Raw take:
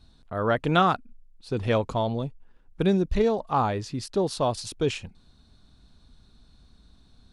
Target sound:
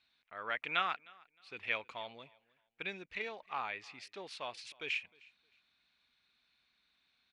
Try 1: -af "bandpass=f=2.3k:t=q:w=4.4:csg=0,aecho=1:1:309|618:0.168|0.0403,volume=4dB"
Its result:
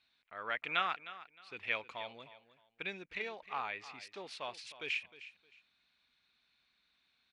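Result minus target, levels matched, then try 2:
echo-to-direct +9.5 dB
-af "bandpass=f=2.3k:t=q:w=4.4:csg=0,aecho=1:1:309|618:0.0562|0.0135,volume=4dB"

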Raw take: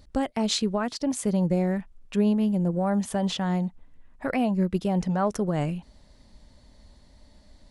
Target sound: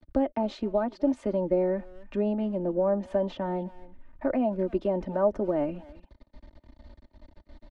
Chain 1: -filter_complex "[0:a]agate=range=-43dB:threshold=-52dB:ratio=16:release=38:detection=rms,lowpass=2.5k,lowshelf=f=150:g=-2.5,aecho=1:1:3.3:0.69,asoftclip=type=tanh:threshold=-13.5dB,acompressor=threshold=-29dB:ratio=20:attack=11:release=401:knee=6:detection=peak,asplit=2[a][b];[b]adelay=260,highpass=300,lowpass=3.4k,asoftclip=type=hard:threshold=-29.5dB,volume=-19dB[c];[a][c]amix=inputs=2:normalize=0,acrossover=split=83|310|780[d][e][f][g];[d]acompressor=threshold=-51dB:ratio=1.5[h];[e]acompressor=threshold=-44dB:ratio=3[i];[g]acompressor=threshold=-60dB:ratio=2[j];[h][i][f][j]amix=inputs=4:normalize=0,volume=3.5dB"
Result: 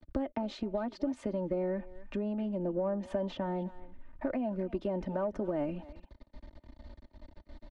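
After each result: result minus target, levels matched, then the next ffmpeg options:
soft clip: distortion +20 dB; compressor: peak gain reduction +11 dB
-filter_complex "[0:a]agate=range=-43dB:threshold=-52dB:ratio=16:release=38:detection=rms,lowpass=2.5k,lowshelf=f=150:g=-2.5,aecho=1:1:3.3:0.69,asoftclip=type=tanh:threshold=-2.5dB,acompressor=threshold=-29dB:ratio=20:attack=11:release=401:knee=6:detection=peak,asplit=2[a][b];[b]adelay=260,highpass=300,lowpass=3.4k,asoftclip=type=hard:threshold=-29.5dB,volume=-19dB[c];[a][c]amix=inputs=2:normalize=0,acrossover=split=83|310|780[d][e][f][g];[d]acompressor=threshold=-51dB:ratio=1.5[h];[e]acompressor=threshold=-44dB:ratio=3[i];[g]acompressor=threshold=-60dB:ratio=2[j];[h][i][f][j]amix=inputs=4:normalize=0,volume=3.5dB"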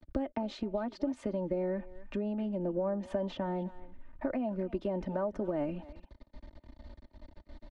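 compressor: peak gain reduction +13 dB
-filter_complex "[0:a]agate=range=-43dB:threshold=-52dB:ratio=16:release=38:detection=rms,lowpass=2.5k,lowshelf=f=150:g=-2.5,aecho=1:1:3.3:0.69,asoftclip=type=tanh:threshold=-2.5dB,asplit=2[a][b];[b]adelay=260,highpass=300,lowpass=3.4k,asoftclip=type=hard:threshold=-29.5dB,volume=-19dB[c];[a][c]amix=inputs=2:normalize=0,acrossover=split=83|310|780[d][e][f][g];[d]acompressor=threshold=-51dB:ratio=1.5[h];[e]acompressor=threshold=-44dB:ratio=3[i];[g]acompressor=threshold=-60dB:ratio=2[j];[h][i][f][j]amix=inputs=4:normalize=0,volume=3.5dB"

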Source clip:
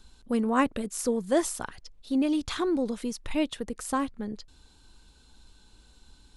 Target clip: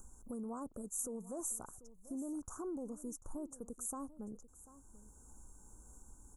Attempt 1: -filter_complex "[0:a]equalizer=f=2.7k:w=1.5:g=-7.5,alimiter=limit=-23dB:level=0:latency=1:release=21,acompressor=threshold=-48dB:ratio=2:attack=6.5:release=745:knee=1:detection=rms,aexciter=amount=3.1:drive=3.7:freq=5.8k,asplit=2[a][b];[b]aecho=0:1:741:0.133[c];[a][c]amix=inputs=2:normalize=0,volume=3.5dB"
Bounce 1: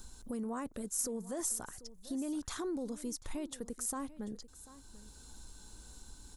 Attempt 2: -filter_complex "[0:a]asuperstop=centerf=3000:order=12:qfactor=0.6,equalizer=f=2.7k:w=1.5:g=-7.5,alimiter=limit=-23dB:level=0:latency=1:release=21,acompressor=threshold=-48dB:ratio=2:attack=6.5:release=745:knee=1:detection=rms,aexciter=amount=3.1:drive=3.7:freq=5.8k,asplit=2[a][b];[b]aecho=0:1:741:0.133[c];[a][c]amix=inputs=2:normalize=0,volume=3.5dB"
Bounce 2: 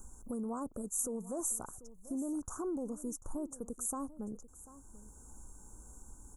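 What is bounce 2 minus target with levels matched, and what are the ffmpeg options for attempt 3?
compressor: peak gain reduction -4.5 dB
-filter_complex "[0:a]asuperstop=centerf=3000:order=12:qfactor=0.6,equalizer=f=2.7k:w=1.5:g=-7.5,alimiter=limit=-23dB:level=0:latency=1:release=21,acompressor=threshold=-57.5dB:ratio=2:attack=6.5:release=745:knee=1:detection=rms,aexciter=amount=3.1:drive=3.7:freq=5.8k,asplit=2[a][b];[b]aecho=0:1:741:0.133[c];[a][c]amix=inputs=2:normalize=0,volume=3.5dB"

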